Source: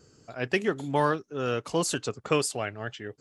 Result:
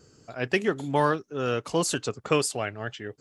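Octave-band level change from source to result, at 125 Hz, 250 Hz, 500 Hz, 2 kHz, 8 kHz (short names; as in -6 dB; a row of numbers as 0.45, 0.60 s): +1.5, +1.5, +1.5, +1.5, +1.5 dB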